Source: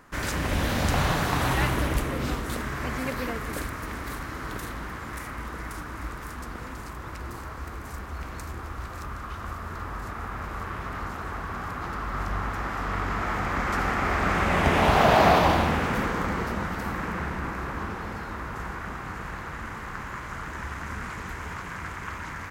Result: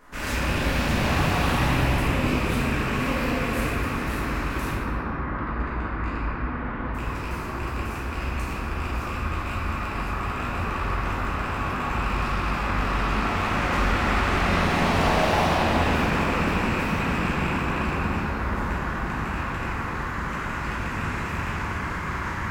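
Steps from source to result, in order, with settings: rattling part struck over -32 dBFS, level -18 dBFS; 4.7–6.93 LPF 1500 Hz -> 2900 Hz 24 dB/oct; soft clip -27.5 dBFS, distortion -6 dB; reverb RT60 3.0 s, pre-delay 5 ms, DRR -10.5 dB; gain -4 dB

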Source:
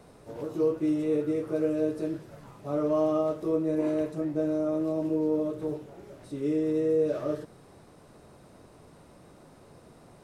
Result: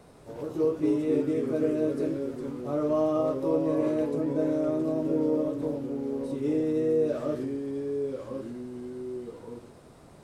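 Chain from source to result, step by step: echoes that change speed 0.165 s, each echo -2 st, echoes 2, each echo -6 dB

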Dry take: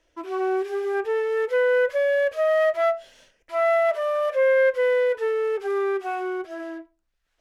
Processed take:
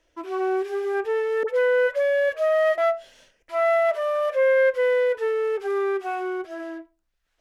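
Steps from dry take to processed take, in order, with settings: 1.43–2.78 dispersion highs, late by 54 ms, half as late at 950 Hz

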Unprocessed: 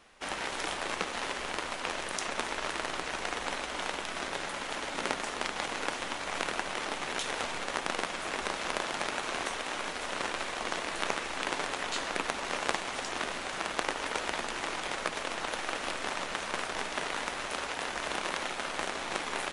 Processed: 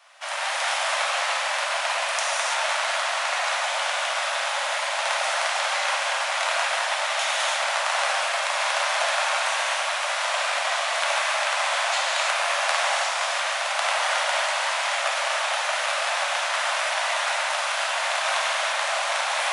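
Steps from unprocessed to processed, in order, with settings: steep high-pass 550 Hz 96 dB/oct; non-linear reverb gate 0.36 s flat, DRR -6 dB; gain +4 dB

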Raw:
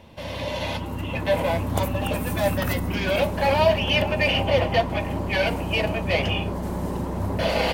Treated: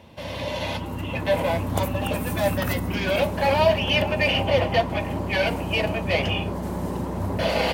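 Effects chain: HPF 58 Hz

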